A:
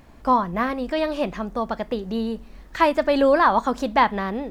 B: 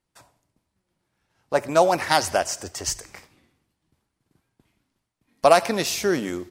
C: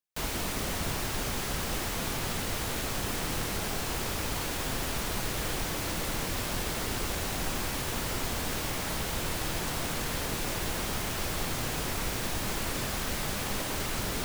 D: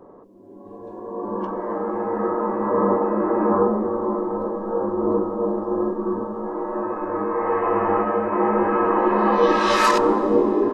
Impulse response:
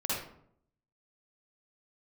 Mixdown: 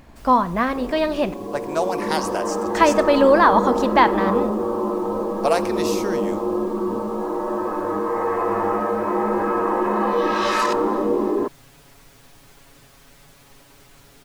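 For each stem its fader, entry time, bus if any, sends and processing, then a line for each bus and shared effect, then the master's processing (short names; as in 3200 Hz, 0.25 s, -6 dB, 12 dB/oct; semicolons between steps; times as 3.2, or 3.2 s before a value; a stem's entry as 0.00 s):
+2.0 dB, 0.00 s, muted 1.34–2.74, send -23.5 dB, dry
-5.5 dB, 0.00 s, no send, dry
-19.5 dB, 0.00 s, no send, comb 7.2 ms, depth 74%
-4.5 dB, 0.75 s, no send, fast leveller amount 50%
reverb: on, RT60 0.65 s, pre-delay 45 ms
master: dry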